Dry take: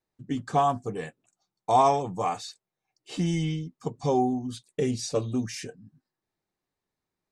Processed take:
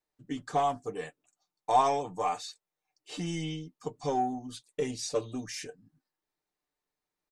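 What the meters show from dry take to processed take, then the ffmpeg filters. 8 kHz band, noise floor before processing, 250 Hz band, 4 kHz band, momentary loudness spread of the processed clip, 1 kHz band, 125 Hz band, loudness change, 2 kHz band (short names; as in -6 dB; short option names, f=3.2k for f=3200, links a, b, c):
-2.0 dB, under -85 dBFS, -8.0 dB, -2.0 dB, 15 LU, -3.5 dB, -10.0 dB, -5.0 dB, -2.0 dB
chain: -filter_complex "[0:a]asplit=2[a][b];[b]asoftclip=type=tanh:threshold=-23.5dB,volume=-11dB[c];[a][c]amix=inputs=2:normalize=0,equalizer=f=120:t=o:w=2.1:g=-10.5,aeval=exprs='0.335*(cos(1*acos(clip(val(0)/0.335,-1,1)))-cos(1*PI/2))+0.00473*(cos(4*acos(clip(val(0)/0.335,-1,1)))-cos(4*PI/2))':c=same,aecho=1:1:6.7:0.42,volume=-4.5dB"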